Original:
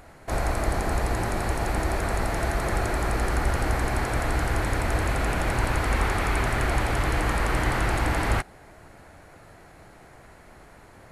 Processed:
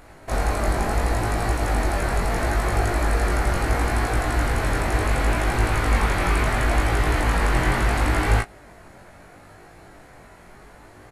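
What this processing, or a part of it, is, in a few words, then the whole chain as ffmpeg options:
double-tracked vocal: -filter_complex "[0:a]asplit=2[a][b];[b]adelay=17,volume=-7dB[c];[a][c]amix=inputs=2:normalize=0,flanger=delay=19.5:depth=2.7:speed=0.72,volume=5dB"

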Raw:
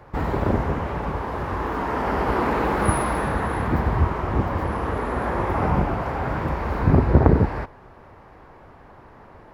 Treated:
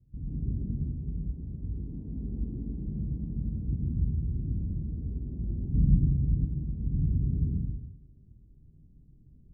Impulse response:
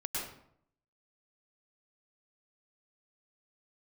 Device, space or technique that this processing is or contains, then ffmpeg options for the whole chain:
club heard from the street: -filter_complex "[0:a]alimiter=limit=-13dB:level=0:latency=1:release=66,lowpass=f=210:w=0.5412,lowpass=f=210:w=1.3066[a];[1:a]atrim=start_sample=2205[b];[a][b]afir=irnorm=-1:irlink=0,asettb=1/sr,asplit=3[c][d][e];[c]atrim=end=5.744[f];[d]atrim=start=5.74:end=6.45,asetpts=PTS-STARTPTS,afade=t=in:d=0.004:c=qsin,afade=t=out:st=0.706:d=0.004:c=qsin,tiltshelf=f=720:g=7.5[g];[e]atrim=start=6.446[h];[f][g]acrossfade=d=0.004:c1=hsin:c2=qsin[i];[i][h]acrossfade=d=0.004:c1=qsin:c2=hsin,volume=-8dB"

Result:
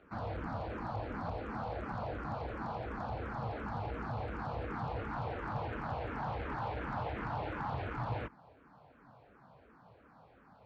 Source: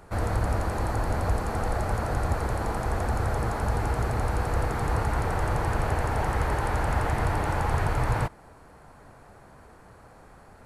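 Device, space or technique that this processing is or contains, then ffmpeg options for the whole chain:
barber-pole phaser into a guitar amplifier: -filter_complex "[0:a]asplit=2[a][b];[b]afreqshift=-2.8[c];[a][c]amix=inputs=2:normalize=1,asoftclip=type=tanh:threshold=-21.5dB,highpass=81,equalizer=f=83:t=q:w=4:g=-7,equalizer=f=260:t=q:w=4:g=3,equalizer=f=390:t=q:w=4:g=-4,equalizer=f=1.9k:t=q:w=4:g=-5,lowpass=f=3.9k:w=0.5412,lowpass=f=3.9k:w=1.3066,volume=-5dB"

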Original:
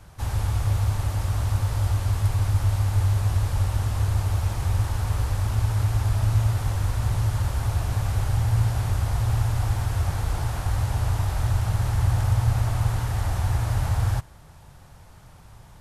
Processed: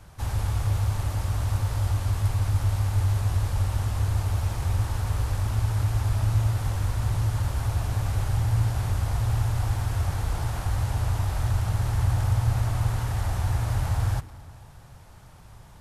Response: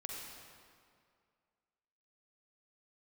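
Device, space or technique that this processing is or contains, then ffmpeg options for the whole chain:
saturated reverb return: -filter_complex "[0:a]asplit=2[a][b];[1:a]atrim=start_sample=2205[c];[b][c]afir=irnorm=-1:irlink=0,asoftclip=type=tanh:threshold=-29dB,volume=-8.5dB[d];[a][d]amix=inputs=2:normalize=0,volume=-2.5dB"

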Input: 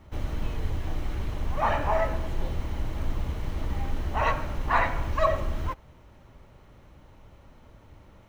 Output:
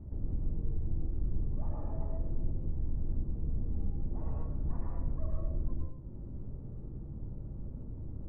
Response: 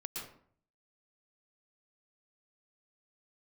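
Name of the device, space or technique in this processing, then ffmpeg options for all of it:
television next door: -filter_complex "[0:a]acompressor=threshold=-45dB:ratio=3,lowpass=280[a];[1:a]atrim=start_sample=2205[b];[a][b]afir=irnorm=-1:irlink=0,volume=11.5dB"

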